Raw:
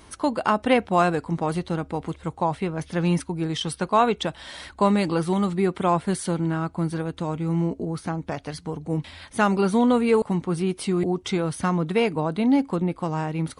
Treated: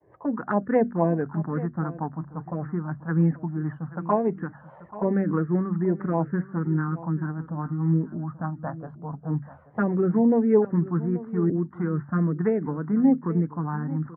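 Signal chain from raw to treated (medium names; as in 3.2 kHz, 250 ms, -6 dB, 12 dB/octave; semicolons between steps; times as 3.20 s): Chebyshev low-pass 1.8 kHz, order 5; expander -49 dBFS; high-pass 120 Hz 24 dB/octave; hum notches 50/100/150/200/250 Hz; touch-sensitive phaser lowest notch 240 Hz, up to 1.4 kHz, full sweep at -16.5 dBFS; rotary cabinet horn 5 Hz; delay 800 ms -16.5 dB; speed mistake 25 fps video run at 24 fps; trim +3.5 dB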